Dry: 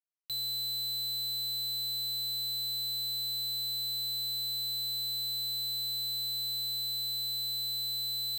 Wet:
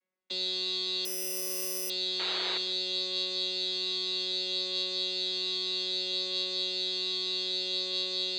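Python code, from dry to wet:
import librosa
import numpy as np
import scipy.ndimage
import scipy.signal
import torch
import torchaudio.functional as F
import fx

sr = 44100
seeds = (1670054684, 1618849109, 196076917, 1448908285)

y = fx.chord_vocoder(x, sr, chord='bare fifth', root=54)
y = fx.peak_eq(y, sr, hz=1800.0, db=10.0, octaves=2.1)
y = y + 0.84 * np.pad(y, (int(5.4 * sr / 1000.0), 0))[:len(y)]
y = fx.small_body(y, sr, hz=(270.0, 410.0, 2100.0), ring_ms=30, db=14)
y = fx.spec_paint(y, sr, seeds[0], shape='noise', start_s=2.19, length_s=0.39, low_hz=320.0, high_hz=3800.0, level_db=-34.0)
y = y + 10.0 ** (-17.5 / 20.0) * np.pad(y, (int(154 * sr / 1000.0), 0))[:len(y)]
y = fx.resample_bad(y, sr, factor=8, down='filtered', up='zero_stuff', at=(1.05, 1.9))
y = y * 10.0 ** (-4.0 / 20.0)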